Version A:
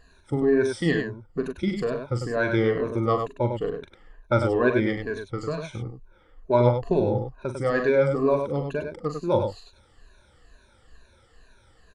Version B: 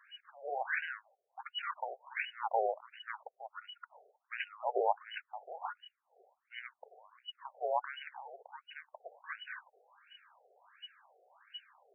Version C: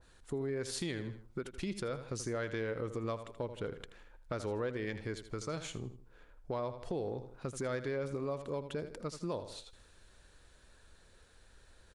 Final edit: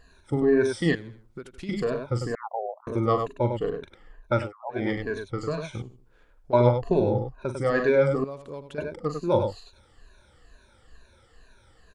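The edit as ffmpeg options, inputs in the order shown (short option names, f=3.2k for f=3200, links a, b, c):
-filter_complex "[2:a]asplit=3[a][b][c];[1:a]asplit=2[d][e];[0:a]asplit=6[f][g][h][i][j][k];[f]atrim=end=0.952[l];[a]atrim=start=0.948:end=1.692[m];[g]atrim=start=1.688:end=2.352[n];[d]atrim=start=2.348:end=2.872[o];[h]atrim=start=2.868:end=4.53[p];[e]atrim=start=4.29:end=4.93[q];[i]atrim=start=4.69:end=5.822[r];[b]atrim=start=5.818:end=6.532[s];[j]atrim=start=6.528:end=8.242[t];[c]atrim=start=8.238:end=8.782[u];[k]atrim=start=8.778[v];[l][m]acrossfade=d=0.004:c1=hsin:c2=hsin[w];[w][n]acrossfade=d=0.004:c1=hsin:c2=hsin[x];[x][o]acrossfade=d=0.004:c1=hsin:c2=hsin[y];[y][p]acrossfade=d=0.004:c1=hsin:c2=hsin[z];[z][q]acrossfade=d=0.24:c1=tri:c2=tri[aa];[aa][r]acrossfade=d=0.24:c1=tri:c2=tri[ab];[ab][s]acrossfade=d=0.004:c1=hsin:c2=hsin[ac];[ac][t]acrossfade=d=0.004:c1=hsin:c2=hsin[ad];[ad][u]acrossfade=d=0.004:c1=hsin:c2=hsin[ae];[ae][v]acrossfade=d=0.004:c1=hsin:c2=hsin"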